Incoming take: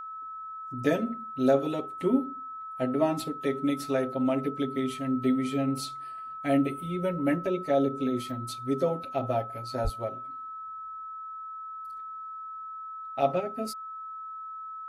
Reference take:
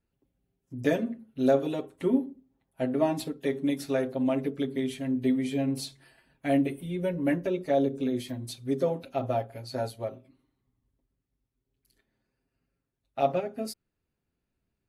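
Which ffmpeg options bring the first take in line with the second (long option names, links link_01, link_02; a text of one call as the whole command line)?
ffmpeg -i in.wav -filter_complex "[0:a]bandreject=frequency=1300:width=30,asplit=3[link_01][link_02][link_03];[link_01]afade=type=out:start_time=9.83:duration=0.02[link_04];[link_02]highpass=frequency=140:width=0.5412,highpass=frequency=140:width=1.3066,afade=type=in:start_time=9.83:duration=0.02,afade=type=out:start_time=9.95:duration=0.02[link_05];[link_03]afade=type=in:start_time=9.95:duration=0.02[link_06];[link_04][link_05][link_06]amix=inputs=3:normalize=0" out.wav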